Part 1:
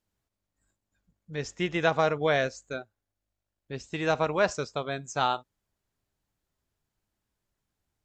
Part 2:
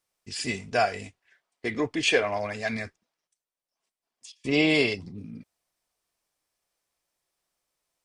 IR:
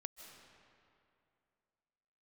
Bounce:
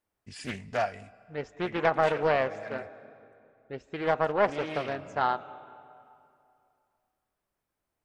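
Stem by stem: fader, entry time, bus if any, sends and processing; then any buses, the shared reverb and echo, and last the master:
-1.0 dB, 0.00 s, send -3.5 dB, tone controls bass -10 dB, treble -11 dB
-3.0 dB, 0.00 s, send -12 dB, bell 390 Hz -7.5 dB 0.77 oct; auto duck -12 dB, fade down 0.50 s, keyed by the first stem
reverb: on, RT60 2.6 s, pre-delay 0.115 s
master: bell 5700 Hz -10.5 dB 2.4 oct; Doppler distortion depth 0.47 ms

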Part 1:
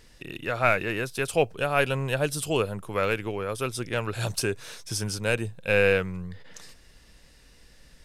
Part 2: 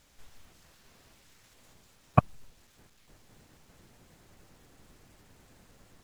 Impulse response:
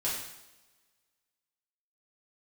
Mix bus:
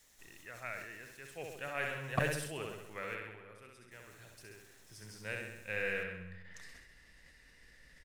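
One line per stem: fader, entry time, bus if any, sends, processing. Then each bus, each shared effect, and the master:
1.19 s -22.5 dB -> 1.67 s -9.5 dB -> 2.97 s -9.5 dB -> 3.64 s -20.5 dB -> 4.66 s -20.5 dB -> 5.28 s -10 dB, 0.00 s, no send, echo send -14 dB, bell 1900 Hz +14 dB 0.5 oct; auto duck -10 dB, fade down 1.90 s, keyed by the second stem
-7.0 dB, 0.00 s, muted 3.15–3.91, no send, no echo send, tone controls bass -5 dB, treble +10 dB; notch 4800 Hz, Q 14; soft clip -14 dBFS, distortion -11 dB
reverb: off
echo: feedback echo 66 ms, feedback 60%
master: sustainer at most 52 dB/s

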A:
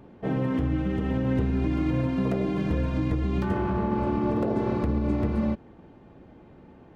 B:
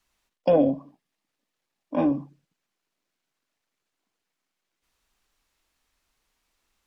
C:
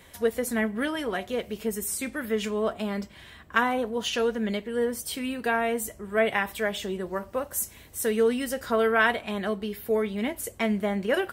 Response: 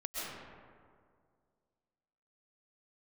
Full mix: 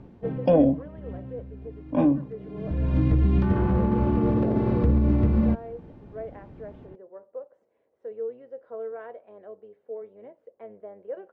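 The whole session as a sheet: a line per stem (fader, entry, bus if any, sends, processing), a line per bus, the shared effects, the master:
-2.5 dB, 0.00 s, no send, hard clip -19 dBFS, distortion -23 dB; auto duck -22 dB, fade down 0.80 s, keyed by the second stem
-2.5 dB, 0.00 s, no send, dry
-7.5 dB, 0.00 s, no send, octaver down 1 oct, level -5 dB; ladder band-pass 560 Hz, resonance 65%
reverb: off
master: LPF 4200 Hz 12 dB/oct; low shelf 260 Hz +11 dB

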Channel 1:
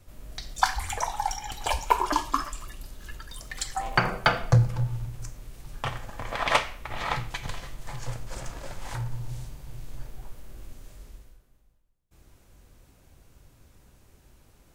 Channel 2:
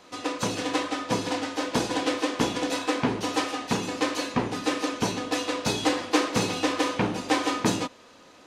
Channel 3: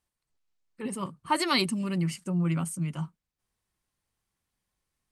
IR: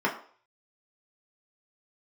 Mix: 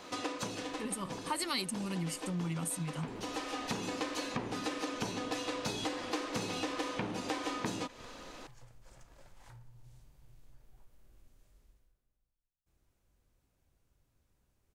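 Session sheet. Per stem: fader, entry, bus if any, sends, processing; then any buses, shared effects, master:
-19.0 dB, 0.55 s, no send, compressor 3:1, threshold -32 dBFS, peak gain reduction 13.5 dB
+2.5 dB, 0.00 s, no send, compressor 2:1, threshold -31 dBFS, peak gain reduction 8 dB; auto duck -10 dB, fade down 0.50 s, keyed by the third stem
-1.0 dB, 0.00 s, no send, high shelf 4900 Hz +11.5 dB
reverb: off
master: compressor 2.5:1, threshold -37 dBFS, peak gain reduction 12 dB

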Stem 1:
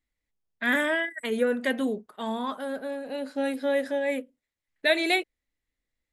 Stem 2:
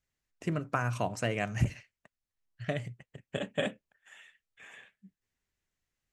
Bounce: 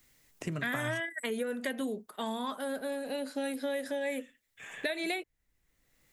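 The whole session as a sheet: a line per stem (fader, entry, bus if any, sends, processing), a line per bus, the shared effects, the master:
-5.0 dB, 0.00 s, no send, compressor, threshold -25 dBFS, peak gain reduction 8.5 dB
-8.0 dB, 0.00 s, muted 1–3.98, no send, bell 130 Hz +6 dB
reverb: off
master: high shelf 6800 Hz +10.5 dB; three-band squash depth 70%

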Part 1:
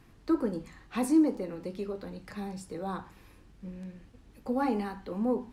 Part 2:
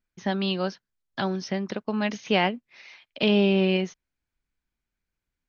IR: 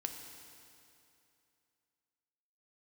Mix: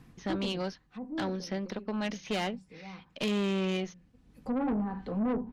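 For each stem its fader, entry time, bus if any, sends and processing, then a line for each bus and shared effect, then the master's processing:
+1.0 dB, 0.00 s, no send, treble ducked by the level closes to 800 Hz, closed at -27.5 dBFS; bell 150 Hz +11 dB 0.9 oct; comb 4 ms, depth 33%; auto duck -15 dB, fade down 0.75 s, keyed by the second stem
-3.0 dB, 0.00 s, no send, dry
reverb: off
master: tube stage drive 26 dB, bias 0.4

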